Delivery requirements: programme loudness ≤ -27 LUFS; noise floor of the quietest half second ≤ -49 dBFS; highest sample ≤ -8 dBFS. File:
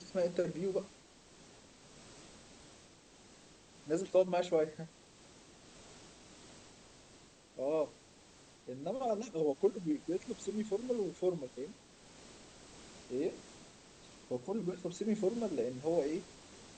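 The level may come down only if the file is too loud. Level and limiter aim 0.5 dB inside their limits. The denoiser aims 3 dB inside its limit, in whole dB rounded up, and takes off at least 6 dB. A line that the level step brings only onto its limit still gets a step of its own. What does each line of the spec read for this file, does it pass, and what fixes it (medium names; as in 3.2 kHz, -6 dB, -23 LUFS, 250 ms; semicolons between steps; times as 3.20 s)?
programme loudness -36.5 LUFS: pass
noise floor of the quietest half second -60 dBFS: pass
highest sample -18.5 dBFS: pass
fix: none needed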